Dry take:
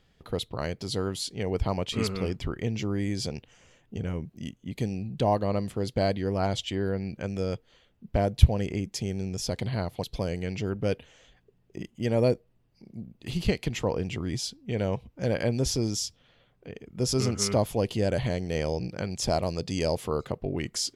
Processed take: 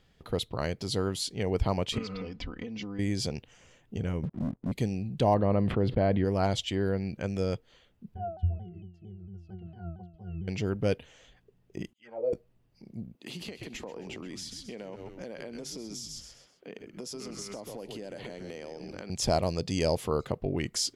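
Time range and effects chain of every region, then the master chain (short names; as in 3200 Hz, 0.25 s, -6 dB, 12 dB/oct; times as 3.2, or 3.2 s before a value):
1.98–2.99 LPF 5500 Hz 24 dB/oct + compressor 12:1, threshold -34 dBFS + comb 4 ms, depth 82%
4.23–4.72 LPF 1100 Hz 24 dB/oct + sample leveller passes 3
5.34–6.25 air absorption 460 m + fast leveller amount 70%
8.14–10.48 octave resonator F, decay 0.44 s + shaped vibrato saw down 4.4 Hz, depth 160 cents
11.93–12.33 auto-wah 500–3800 Hz, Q 5.6, down, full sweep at -19 dBFS + ensemble effect
13.15–19.1 HPF 200 Hz 24 dB/oct + frequency-shifting echo 0.129 s, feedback 36%, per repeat -88 Hz, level -10.5 dB + compressor 12:1, threshold -36 dBFS
whole clip: dry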